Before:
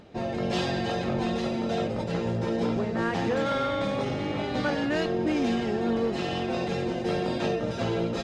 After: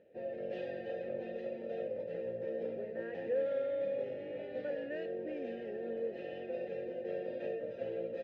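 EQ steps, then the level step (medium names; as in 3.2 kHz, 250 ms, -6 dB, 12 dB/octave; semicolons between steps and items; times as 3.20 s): vowel filter e; tilt EQ -2.5 dB/octave; -4.0 dB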